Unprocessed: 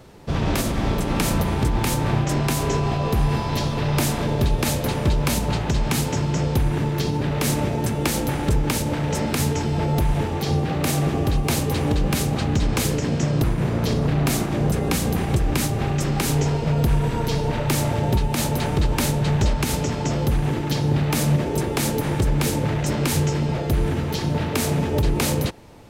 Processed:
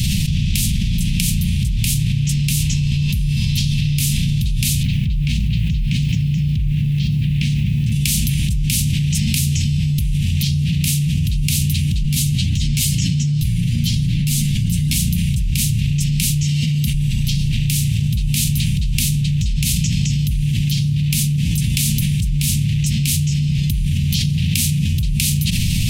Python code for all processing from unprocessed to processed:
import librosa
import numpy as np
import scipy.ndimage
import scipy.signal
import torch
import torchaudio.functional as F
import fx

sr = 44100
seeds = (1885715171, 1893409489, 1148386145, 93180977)

y = fx.chain(x, sr, fx.lowpass(hz=2800.0, slope=12),
    fx.quant_dither(seeds[0], bits=10, dither='triangular'), at=(4.83, 7.92))
y = fx.chain(y, sr, fx.notch(hz=2500.0, q=21.0),
    fx.comb(ms=7.4, depth=0.41),
    fx.ensemble(), at=(12.03, 14.96))
y = fx.chain(y, sr, fx.highpass(hz=230.0, slope=6),
    fx.notch_comb(f0_hz=850.0), at=(16.43, 16.94))
y = scipy.signal.sosfilt(scipy.signal.ellip(3, 1.0, 40, [180.0, 2700.0], 'bandstop', fs=sr, output='sos'), y)
y = fx.peak_eq(y, sr, hz=9800.0, db=2.0, octaves=0.41)
y = fx.env_flatten(y, sr, amount_pct=100)
y = F.gain(torch.from_numpy(y), -1.0).numpy()